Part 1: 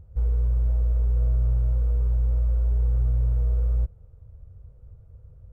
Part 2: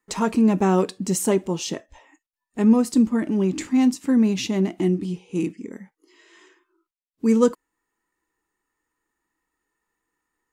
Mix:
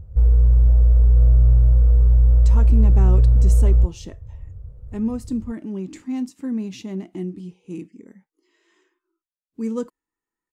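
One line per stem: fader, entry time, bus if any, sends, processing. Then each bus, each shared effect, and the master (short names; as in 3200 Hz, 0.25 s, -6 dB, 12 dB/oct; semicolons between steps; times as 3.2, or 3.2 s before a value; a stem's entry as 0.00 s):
+3.0 dB, 0.00 s, no send, dry
-12.0 dB, 2.35 s, no send, dry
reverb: off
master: low shelf 360 Hz +6 dB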